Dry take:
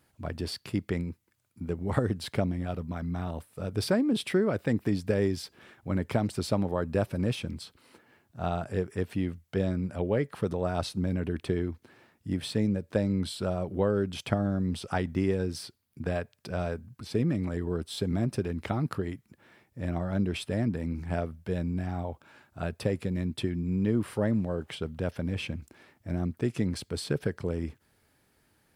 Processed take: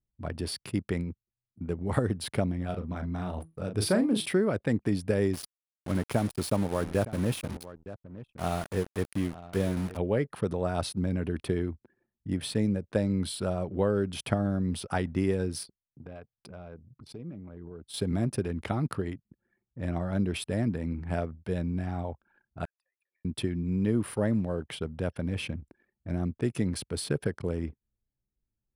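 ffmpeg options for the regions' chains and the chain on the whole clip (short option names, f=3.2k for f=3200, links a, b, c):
-filter_complex "[0:a]asettb=1/sr,asplit=3[a][b][c];[a]atrim=end=2.664[d];[b]atrim=start=2.66:end=4.26,asetpts=PTS-STARTPTS,afade=t=in:d=0.004:c=qsin,afade=t=out:st=1.596:d=0.004:c=qsin,asplit=2[e][f];[f]adelay=38,volume=-7dB[g];[e][g]amix=inputs=2:normalize=0,atrim=end_sample=70560,bandreject=f=161.9:t=h:w=4,bandreject=f=323.8:t=h:w=4,bandreject=f=485.7:t=h:w=4,bandreject=f=647.6:t=h:w=4,bandreject=f=809.5:t=h:w=4,bandreject=f=971.4:t=h:w=4,bandreject=f=1.1333k:t=h:w=4[h];[c]atrim=start=4.256[i];[d][h]acrossfade=d=0.004:c1=hsin:c2=qsin[j];[j][i]acrossfade=d=0.004:c1=qsin:c2=hsin,asettb=1/sr,asplit=3[k][l][m];[k]atrim=end=5.334[n];[l]atrim=start=5.33:end=9.97,asetpts=PTS-STARTPTS,afade=t=in:d=0.004:c=qsin,afade=t=out:st=4.636:d=0.004:c=qsin,aeval=exprs='val(0)*gte(abs(val(0)),0.0158)':c=same,aecho=1:1:915:0.168,atrim=end_sample=204624[o];[m]atrim=start=9.966[p];[n][o]acrossfade=d=0.004:c1=hsin:c2=qsin[q];[q][p]acrossfade=d=0.004:c1=qsin:c2=hsin,asettb=1/sr,asplit=3[r][s][t];[r]atrim=end=15.634[u];[s]atrim=start=15.63:end=17.94,asetpts=PTS-STARTPTS,afade=t=in:d=0.004:c=qsin,afade=t=out:st=2.306:d=0.004:c=qsin,bandreject=f=1.8k:w=8.1,acompressor=threshold=-41dB:ratio=2:attack=3.2:release=140:knee=1:detection=peak,flanger=delay=4.8:depth=2.7:regen=80:speed=1.1:shape=sinusoidal[v];[t]atrim=start=17.936[w];[u][v]acrossfade=d=0.004:c1=hsin:c2=qsin[x];[x][w]acrossfade=d=0.004:c1=qsin:c2=hsin,asettb=1/sr,asplit=3[y][z][aa];[y]atrim=end=22.654[ab];[z]atrim=start=22.65:end=23.25,asetpts=PTS-STARTPTS,afade=t=in:d=0.004:c=qsin,afade=t=out:st=0.596:d=0.004:c=qsin,highpass=f=950:w=0.5412,highpass=f=950:w=1.3066,acompressor=threshold=-56dB:ratio=16:attack=3.2:release=140:knee=1:detection=peak[ac];[aa]atrim=start=23.246[ad];[ab][ac]acrossfade=d=0.004:c1=hsin:c2=qsin[ae];[ae][ad]acrossfade=d=0.004:c1=qsin:c2=hsin,anlmdn=0.01,equalizer=f=9.8k:w=8:g=13.5"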